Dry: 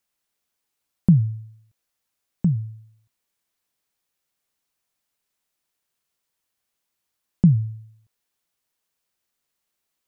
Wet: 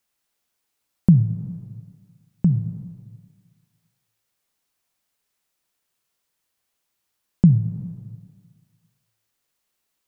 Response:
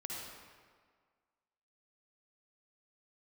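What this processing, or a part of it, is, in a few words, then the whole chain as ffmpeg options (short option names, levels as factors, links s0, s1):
compressed reverb return: -filter_complex "[0:a]asplit=2[s0][s1];[1:a]atrim=start_sample=2205[s2];[s1][s2]afir=irnorm=-1:irlink=0,acompressor=threshold=0.1:ratio=6,volume=0.596[s3];[s0][s3]amix=inputs=2:normalize=0"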